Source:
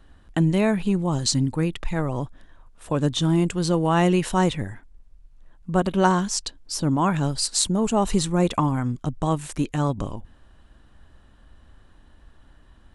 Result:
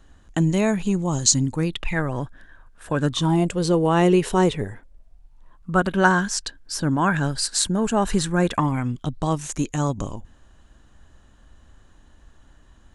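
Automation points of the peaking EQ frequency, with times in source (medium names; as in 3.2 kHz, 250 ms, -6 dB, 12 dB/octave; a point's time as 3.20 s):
peaking EQ +14 dB 0.3 oct
1.57 s 6.7 kHz
2.01 s 1.6 kHz
2.99 s 1.6 kHz
3.67 s 420 Hz
4.63 s 420 Hz
5.92 s 1.6 kHz
8.52 s 1.6 kHz
9.50 s 6.7 kHz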